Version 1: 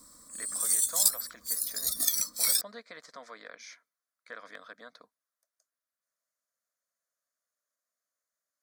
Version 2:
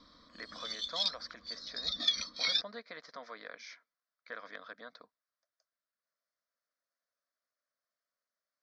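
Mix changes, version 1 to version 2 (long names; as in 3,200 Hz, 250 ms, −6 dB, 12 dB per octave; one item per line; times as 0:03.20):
background: add low-pass with resonance 3,400 Hz, resonance Q 3.4
master: add Butterworth low-pass 5,600 Hz 48 dB per octave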